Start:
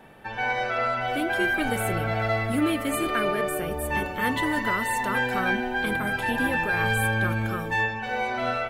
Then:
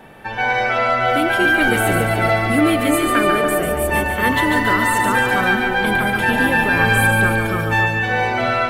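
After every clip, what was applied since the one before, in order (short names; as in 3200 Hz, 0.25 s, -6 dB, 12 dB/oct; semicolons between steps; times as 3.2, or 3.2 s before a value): split-band echo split 900 Hz, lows 0.283 s, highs 0.143 s, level -5 dB; gain +7.5 dB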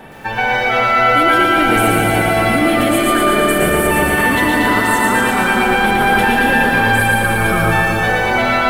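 in parallel at 0 dB: negative-ratio compressor -20 dBFS, ratio -0.5; on the sum: lo-fi delay 0.116 s, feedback 80%, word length 7-bit, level -3.5 dB; gain -3 dB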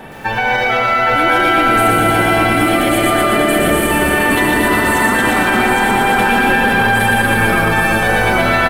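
limiter -9.5 dBFS, peak gain reduction 8 dB; on a send: echo 0.815 s -4 dB; on the sum: gain +3.5 dB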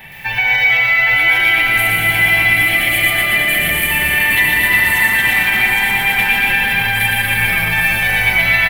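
EQ curve 160 Hz 0 dB, 250 Hz -13 dB, 500 Hz -12 dB, 860 Hz -4 dB, 1400 Hz -9 dB, 2000 Hz +13 dB, 4400 Hz +3 dB, 8100 Hz -2 dB, 14000 Hz +14 dB; gain -4 dB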